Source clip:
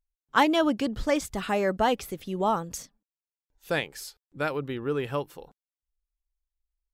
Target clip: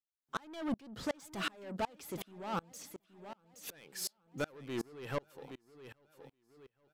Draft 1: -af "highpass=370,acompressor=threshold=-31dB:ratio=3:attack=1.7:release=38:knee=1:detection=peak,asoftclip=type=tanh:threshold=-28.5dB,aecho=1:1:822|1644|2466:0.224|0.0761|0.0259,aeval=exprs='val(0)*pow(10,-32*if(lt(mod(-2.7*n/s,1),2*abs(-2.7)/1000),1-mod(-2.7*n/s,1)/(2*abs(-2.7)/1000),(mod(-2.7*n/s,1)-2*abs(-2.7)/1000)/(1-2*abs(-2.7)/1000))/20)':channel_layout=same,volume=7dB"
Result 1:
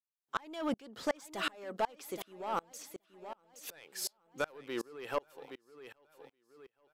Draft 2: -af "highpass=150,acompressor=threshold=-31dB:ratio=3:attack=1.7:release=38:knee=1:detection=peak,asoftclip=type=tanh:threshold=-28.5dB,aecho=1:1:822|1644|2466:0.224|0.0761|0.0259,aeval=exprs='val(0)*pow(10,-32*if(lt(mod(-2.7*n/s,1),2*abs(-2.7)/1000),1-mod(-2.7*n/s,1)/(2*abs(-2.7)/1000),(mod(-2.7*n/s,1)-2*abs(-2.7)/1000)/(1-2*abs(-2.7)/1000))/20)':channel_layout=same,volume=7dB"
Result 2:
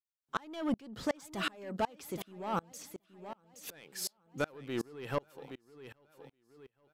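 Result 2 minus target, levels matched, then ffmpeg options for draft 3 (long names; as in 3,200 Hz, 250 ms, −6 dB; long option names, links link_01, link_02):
soft clipping: distortion −6 dB
-af "highpass=150,acompressor=threshold=-31dB:ratio=3:attack=1.7:release=38:knee=1:detection=peak,asoftclip=type=tanh:threshold=-34.5dB,aecho=1:1:822|1644|2466:0.224|0.0761|0.0259,aeval=exprs='val(0)*pow(10,-32*if(lt(mod(-2.7*n/s,1),2*abs(-2.7)/1000),1-mod(-2.7*n/s,1)/(2*abs(-2.7)/1000),(mod(-2.7*n/s,1)-2*abs(-2.7)/1000)/(1-2*abs(-2.7)/1000))/20)':channel_layout=same,volume=7dB"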